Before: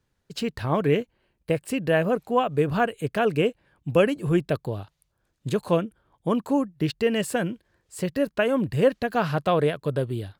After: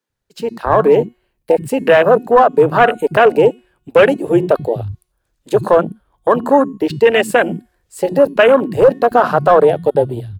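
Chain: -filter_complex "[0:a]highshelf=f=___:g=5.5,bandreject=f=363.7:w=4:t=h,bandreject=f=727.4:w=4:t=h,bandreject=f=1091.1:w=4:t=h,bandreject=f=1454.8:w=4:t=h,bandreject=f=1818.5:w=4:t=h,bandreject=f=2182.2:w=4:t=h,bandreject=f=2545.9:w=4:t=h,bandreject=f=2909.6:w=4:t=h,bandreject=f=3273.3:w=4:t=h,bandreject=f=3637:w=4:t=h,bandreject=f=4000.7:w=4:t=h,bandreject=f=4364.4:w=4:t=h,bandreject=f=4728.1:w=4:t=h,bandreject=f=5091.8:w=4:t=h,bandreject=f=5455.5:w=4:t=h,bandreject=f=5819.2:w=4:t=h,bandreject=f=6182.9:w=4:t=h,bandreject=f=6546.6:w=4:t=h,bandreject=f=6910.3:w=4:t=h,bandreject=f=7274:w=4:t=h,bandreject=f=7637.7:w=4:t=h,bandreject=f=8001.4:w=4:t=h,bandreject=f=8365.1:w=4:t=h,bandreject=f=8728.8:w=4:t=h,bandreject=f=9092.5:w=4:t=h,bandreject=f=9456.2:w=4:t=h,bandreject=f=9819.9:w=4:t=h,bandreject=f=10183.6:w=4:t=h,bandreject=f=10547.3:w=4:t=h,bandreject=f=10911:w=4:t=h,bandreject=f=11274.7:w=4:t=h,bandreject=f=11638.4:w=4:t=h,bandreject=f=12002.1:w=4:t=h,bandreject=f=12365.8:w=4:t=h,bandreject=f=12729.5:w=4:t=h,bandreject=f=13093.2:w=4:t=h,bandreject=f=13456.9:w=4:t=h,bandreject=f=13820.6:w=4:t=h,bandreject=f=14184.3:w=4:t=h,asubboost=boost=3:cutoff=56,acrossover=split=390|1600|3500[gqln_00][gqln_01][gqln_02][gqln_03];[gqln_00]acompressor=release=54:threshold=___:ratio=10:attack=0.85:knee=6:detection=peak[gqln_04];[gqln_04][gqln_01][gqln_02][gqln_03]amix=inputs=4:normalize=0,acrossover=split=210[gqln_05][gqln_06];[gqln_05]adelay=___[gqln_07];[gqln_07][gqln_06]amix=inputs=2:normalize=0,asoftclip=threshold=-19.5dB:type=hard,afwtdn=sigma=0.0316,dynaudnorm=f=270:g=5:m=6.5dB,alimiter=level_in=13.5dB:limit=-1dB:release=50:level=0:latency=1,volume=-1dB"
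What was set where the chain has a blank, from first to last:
8800, -37dB, 90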